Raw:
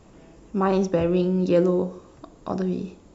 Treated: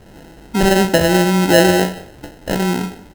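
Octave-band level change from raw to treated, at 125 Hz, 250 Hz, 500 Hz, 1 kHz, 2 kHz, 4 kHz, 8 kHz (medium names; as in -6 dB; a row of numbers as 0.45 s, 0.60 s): +7.5 dB, +7.0 dB, +7.0 dB, +11.5 dB, +20.5 dB, +22.0 dB, no reading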